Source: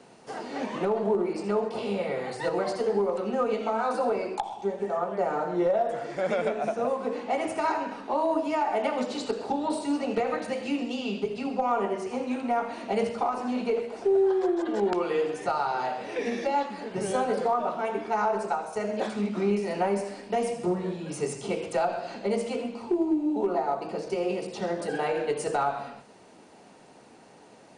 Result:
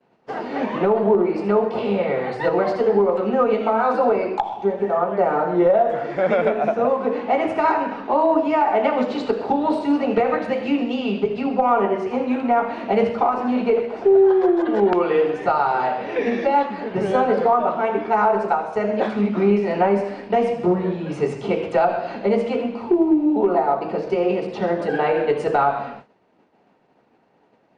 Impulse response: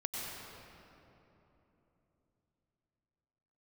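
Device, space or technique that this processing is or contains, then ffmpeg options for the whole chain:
hearing-loss simulation: -af "lowpass=2700,agate=range=0.0224:threshold=0.00794:ratio=3:detection=peak,volume=2.66"

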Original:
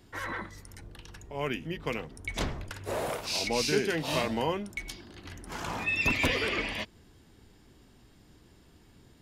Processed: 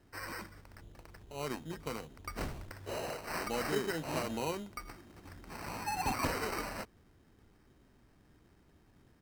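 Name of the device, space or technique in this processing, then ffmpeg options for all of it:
crushed at another speed: -af "asetrate=35280,aresample=44100,acrusher=samples=16:mix=1:aa=0.000001,asetrate=55125,aresample=44100,volume=0.473"

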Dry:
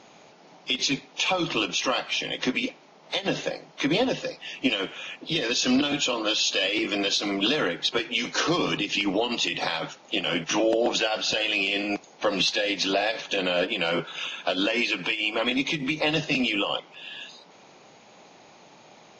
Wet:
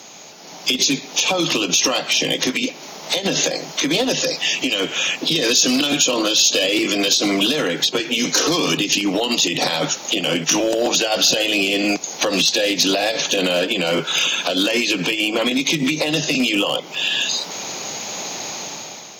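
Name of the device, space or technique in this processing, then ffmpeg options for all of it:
FM broadcast chain: -filter_complex "[0:a]highpass=67,dynaudnorm=f=140:g=9:m=3.98,acrossover=split=120|620[s0][s1][s2];[s0]acompressor=threshold=0.00251:ratio=4[s3];[s1]acompressor=threshold=0.0708:ratio=4[s4];[s2]acompressor=threshold=0.0355:ratio=4[s5];[s3][s4][s5]amix=inputs=3:normalize=0,aemphasis=mode=production:type=50fm,alimiter=limit=0.15:level=0:latency=1:release=122,asoftclip=type=hard:threshold=0.112,lowpass=f=15000:w=0.5412,lowpass=f=15000:w=1.3066,aemphasis=mode=production:type=50fm,volume=2.24"

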